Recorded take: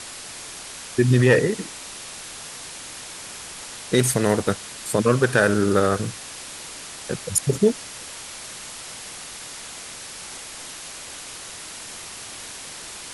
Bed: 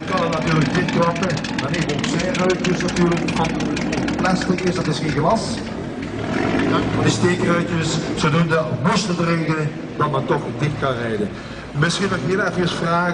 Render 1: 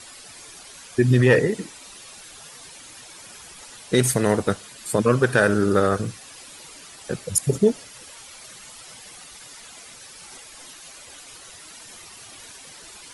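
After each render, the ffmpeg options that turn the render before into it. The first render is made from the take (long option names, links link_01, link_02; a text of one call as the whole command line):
ffmpeg -i in.wav -af "afftdn=noise_reduction=11:noise_floor=-38" out.wav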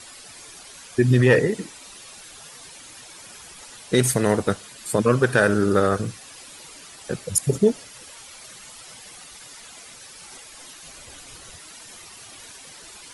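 ffmpeg -i in.wav -filter_complex "[0:a]asettb=1/sr,asplit=3[link_01][link_02][link_03];[link_01]atrim=end=10.824[link_04];[link_02]atrim=start=10.82:end=11.58,asetpts=PTS-STARTPTS,afade=type=in:duration=0.004:curve=qsin,afade=type=out:start_time=0.756:duration=0.004:curve=qsin,lowshelf=frequency=220:gain=10.5[link_05];[link_03]atrim=start=11.576[link_06];[link_04][link_05]acrossfade=duration=0.004:curve1=hsin:curve2=qsin[link_07];[link_07][link_06]acrossfade=duration=0.004:curve1=qsin:curve2=hsin" out.wav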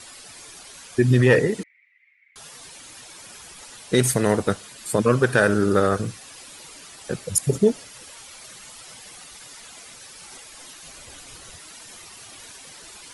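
ffmpeg -i in.wav -filter_complex "[0:a]asettb=1/sr,asplit=3[link_01][link_02][link_03];[link_01]atrim=end=1.634[link_04];[link_02]atrim=start=1.63:end=2.36,asetpts=PTS-STARTPTS,afade=type=in:duration=0.004:curve=qsin,afade=type=out:start_time=0.726:duration=0.004:curve=qsin,asuperpass=centerf=2100:order=4:qfactor=7.5[link_05];[link_03]atrim=start=2.356[link_06];[link_04][link_05]acrossfade=duration=0.004:curve1=hsin:curve2=qsin[link_07];[link_07][link_06]acrossfade=duration=0.004:curve1=qsin:curve2=hsin" out.wav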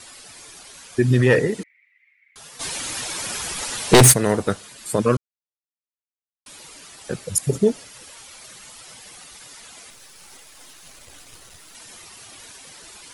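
ffmpeg -i in.wav -filter_complex "[0:a]asplit=3[link_01][link_02][link_03];[link_01]afade=type=out:start_time=2.59:duration=0.02[link_04];[link_02]aeval=exprs='0.531*sin(PI/2*3.16*val(0)/0.531)':channel_layout=same,afade=type=in:start_time=2.59:duration=0.02,afade=type=out:start_time=4.12:duration=0.02[link_05];[link_03]afade=type=in:start_time=4.12:duration=0.02[link_06];[link_04][link_05][link_06]amix=inputs=3:normalize=0,asettb=1/sr,asplit=3[link_07][link_08][link_09];[link_07]atrim=end=9.904[link_10];[link_08]atrim=start=9.9:end=11.75,asetpts=PTS-STARTPTS,afade=type=in:duration=0.004:curve=qsin,afade=type=out:start_time=1.846:duration=0.004:curve=qsin,aeval=exprs='if(lt(val(0),0),0.251*val(0),val(0))':channel_layout=same[link_11];[link_09]atrim=start=11.746[link_12];[link_10][link_11]acrossfade=duration=0.004:curve1=hsin:curve2=qsin[link_13];[link_13][link_12]acrossfade=duration=0.004:curve1=qsin:curve2=hsin,asplit=3[link_14][link_15][link_16];[link_14]atrim=end=5.17,asetpts=PTS-STARTPTS,afade=type=out:start_time=5.166:duration=0.004:curve=hsin[link_17];[link_15]atrim=start=5.17:end=6.46,asetpts=PTS-STARTPTS,volume=0[link_18];[link_16]atrim=start=6.46,asetpts=PTS-STARTPTS,afade=type=in:duration=0.004:curve=hsin[link_19];[link_17][link_18][link_19]concat=n=3:v=0:a=1" out.wav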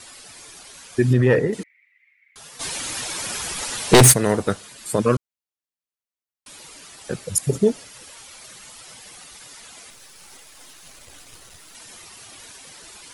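ffmpeg -i in.wav -filter_complex "[0:a]asettb=1/sr,asplit=3[link_01][link_02][link_03];[link_01]atrim=end=1.134[link_04];[link_02]atrim=start=1.13:end=1.53,asetpts=PTS-STARTPTS,afade=type=in:duration=0.004:curve=qsin,afade=type=out:start_time=0.396:duration=0.004:curve=qsin,highshelf=frequency=2600:gain=-11.5[link_05];[link_03]atrim=start=1.526[link_06];[link_04][link_05]acrossfade=duration=0.004:curve1=hsin:curve2=qsin[link_07];[link_07][link_06]acrossfade=duration=0.004:curve1=qsin:curve2=hsin" out.wav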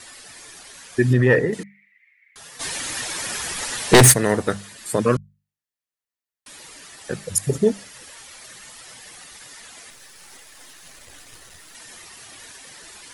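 ffmpeg -i in.wav -af "equalizer=frequency=1800:width_type=o:width=0.25:gain=6.5,bandreject=frequency=50:width_type=h:width=6,bandreject=frequency=100:width_type=h:width=6,bandreject=frequency=150:width_type=h:width=6,bandreject=frequency=200:width_type=h:width=6" out.wav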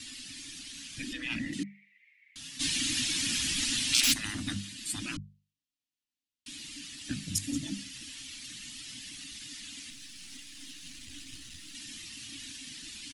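ffmpeg -i in.wav -af "afftfilt=real='re*lt(hypot(re,im),0.224)':imag='im*lt(hypot(re,im),0.224)':win_size=1024:overlap=0.75,firequalizer=gain_entry='entry(190,0);entry(280,10);entry(400,-21);entry(670,-22);entry(2800,3);entry(14000,-11)':delay=0.05:min_phase=1" out.wav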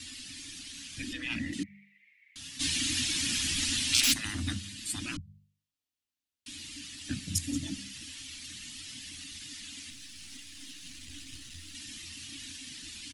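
ffmpeg -i in.wav -af "equalizer=frequency=85:width=7.2:gain=14,bandreject=frequency=50:width_type=h:width=6,bandreject=frequency=100:width_type=h:width=6,bandreject=frequency=150:width_type=h:width=6,bandreject=frequency=200:width_type=h:width=6" out.wav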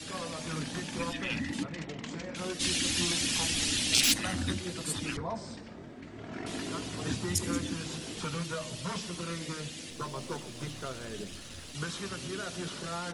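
ffmpeg -i in.wav -i bed.wav -filter_complex "[1:a]volume=-19.5dB[link_01];[0:a][link_01]amix=inputs=2:normalize=0" out.wav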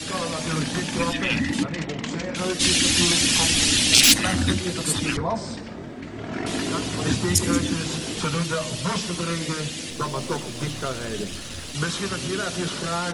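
ffmpeg -i in.wav -af "volume=10.5dB,alimiter=limit=-1dB:level=0:latency=1" out.wav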